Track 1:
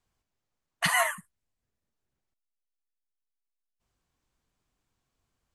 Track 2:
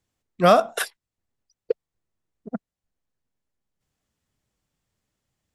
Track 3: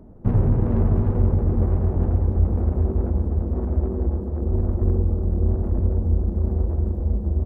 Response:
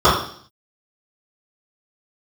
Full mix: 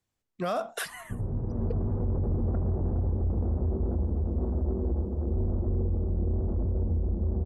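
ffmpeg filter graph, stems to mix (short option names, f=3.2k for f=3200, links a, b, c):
-filter_complex "[0:a]acompressor=threshold=-30dB:ratio=4,volume=-12dB,asplit=2[a][b];[1:a]asoftclip=type=hard:threshold=-5.5dB,volume=-5dB[c];[2:a]lowpass=1.1k,adelay=850,volume=-4dB[d];[b]apad=whole_len=366125[e];[d][e]sidechaincompress=threshold=-50dB:ratio=8:attack=10:release=1340[f];[a][c][f]amix=inputs=3:normalize=0,alimiter=limit=-21.5dB:level=0:latency=1:release=13"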